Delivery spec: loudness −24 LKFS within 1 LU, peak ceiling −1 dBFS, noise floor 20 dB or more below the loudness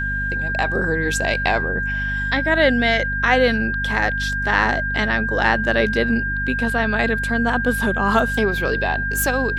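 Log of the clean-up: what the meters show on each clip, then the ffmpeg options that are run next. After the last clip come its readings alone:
mains hum 50 Hz; hum harmonics up to 250 Hz; level of the hum −25 dBFS; interfering tone 1,600 Hz; level of the tone −22 dBFS; integrated loudness −19.0 LKFS; sample peak −3.0 dBFS; target loudness −24.0 LKFS
→ -af "bandreject=frequency=50:width_type=h:width=4,bandreject=frequency=100:width_type=h:width=4,bandreject=frequency=150:width_type=h:width=4,bandreject=frequency=200:width_type=h:width=4,bandreject=frequency=250:width_type=h:width=4"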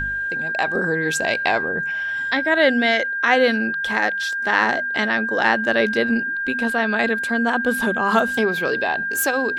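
mains hum none found; interfering tone 1,600 Hz; level of the tone −22 dBFS
→ -af "bandreject=frequency=1600:width=30"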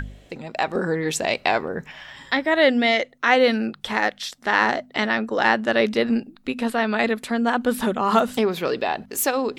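interfering tone none found; integrated loudness −21.5 LKFS; sample peak −3.5 dBFS; target loudness −24.0 LKFS
→ -af "volume=-2.5dB"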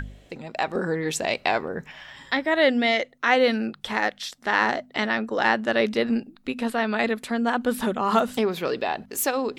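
integrated loudness −24.0 LKFS; sample peak −6.0 dBFS; background noise floor −54 dBFS

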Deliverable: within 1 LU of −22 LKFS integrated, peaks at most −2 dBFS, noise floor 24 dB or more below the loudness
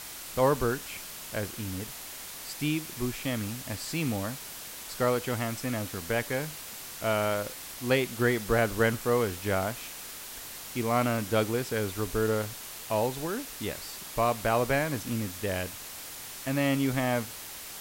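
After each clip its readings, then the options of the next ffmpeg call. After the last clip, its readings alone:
background noise floor −42 dBFS; target noise floor −55 dBFS; integrated loudness −30.5 LKFS; sample peak −12.0 dBFS; target loudness −22.0 LKFS
→ -af "afftdn=noise_reduction=13:noise_floor=-42"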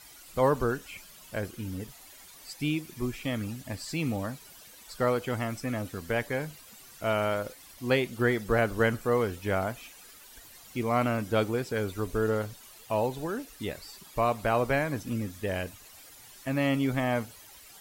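background noise floor −52 dBFS; target noise floor −55 dBFS
→ -af "afftdn=noise_reduction=6:noise_floor=-52"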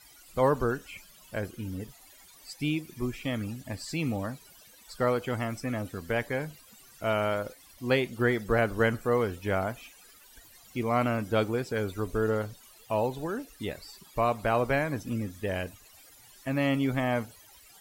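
background noise floor −55 dBFS; integrated loudness −30.5 LKFS; sample peak −12.0 dBFS; target loudness −22.0 LKFS
→ -af "volume=8.5dB"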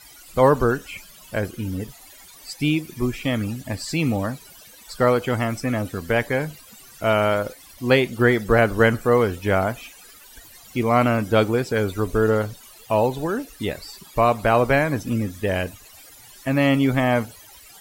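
integrated loudness −22.0 LKFS; sample peak −3.5 dBFS; background noise floor −47 dBFS

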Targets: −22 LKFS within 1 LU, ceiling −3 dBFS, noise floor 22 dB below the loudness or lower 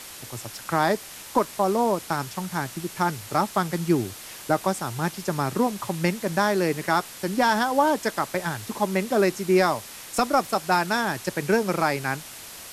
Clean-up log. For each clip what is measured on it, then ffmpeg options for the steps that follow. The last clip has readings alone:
background noise floor −41 dBFS; target noise floor −47 dBFS; integrated loudness −25.0 LKFS; sample peak −8.5 dBFS; target loudness −22.0 LKFS
→ -af "afftdn=noise_reduction=6:noise_floor=-41"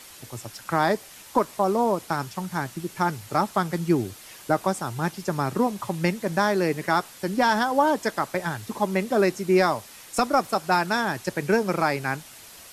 background noise floor −46 dBFS; target noise floor −47 dBFS
→ -af "afftdn=noise_reduction=6:noise_floor=-46"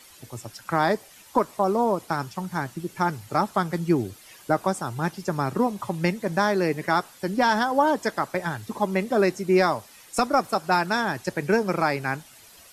background noise floor −50 dBFS; integrated loudness −25.0 LKFS; sample peak −9.0 dBFS; target loudness −22.0 LKFS
→ -af "volume=3dB"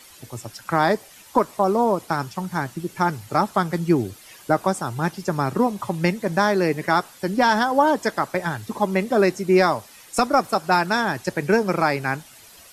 integrated loudness −22.0 LKFS; sample peak −6.0 dBFS; background noise floor −47 dBFS

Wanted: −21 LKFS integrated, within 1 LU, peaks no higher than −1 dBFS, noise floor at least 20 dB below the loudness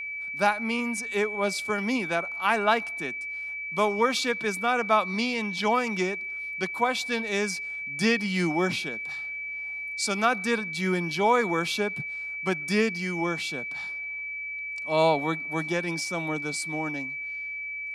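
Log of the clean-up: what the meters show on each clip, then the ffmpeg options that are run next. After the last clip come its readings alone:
interfering tone 2,300 Hz; level of the tone −32 dBFS; integrated loudness −27.0 LKFS; sample peak −9.0 dBFS; target loudness −21.0 LKFS
→ -af "bandreject=frequency=2300:width=30"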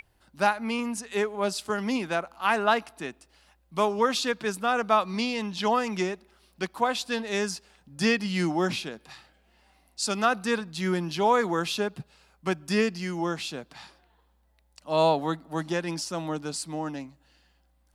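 interfering tone none found; integrated loudness −27.5 LKFS; sample peak −9.5 dBFS; target loudness −21.0 LKFS
→ -af "volume=6.5dB"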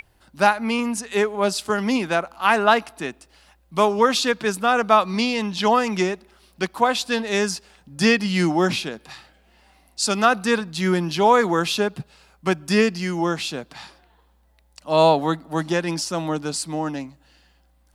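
integrated loudness −21.0 LKFS; sample peak −3.0 dBFS; background noise floor −60 dBFS

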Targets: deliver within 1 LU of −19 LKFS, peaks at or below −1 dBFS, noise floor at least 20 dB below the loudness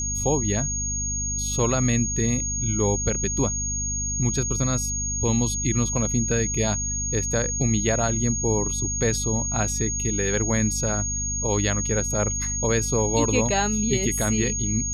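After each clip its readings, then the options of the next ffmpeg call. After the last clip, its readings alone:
mains hum 50 Hz; hum harmonics up to 250 Hz; level of the hum −29 dBFS; interfering tone 6,600 Hz; level of the tone −26 dBFS; integrated loudness −23.0 LKFS; sample peak −9.0 dBFS; target loudness −19.0 LKFS
→ -af "bandreject=frequency=50:width_type=h:width=4,bandreject=frequency=100:width_type=h:width=4,bandreject=frequency=150:width_type=h:width=4,bandreject=frequency=200:width_type=h:width=4,bandreject=frequency=250:width_type=h:width=4"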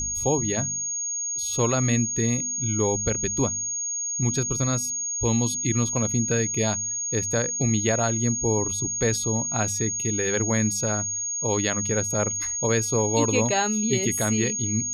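mains hum none found; interfering tone 6,600 Hz; level of the tone −26 dBFS
→ -af "bandreject=frequency=6600:width=30"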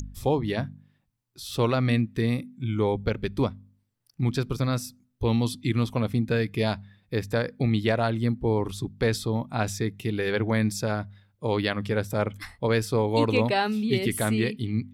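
interfering tone none found; integrated loudness −26.5 LKFS; sample peak −10.5 dBFS; target loudness −19.0 LKFS
→ -af "volume=7.5dB"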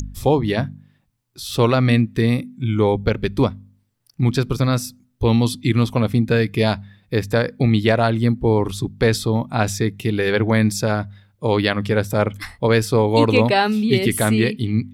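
integrated loudness −19.0 LKFS; sample peak −3.0 dBFS; background noise floor −64 dBFS

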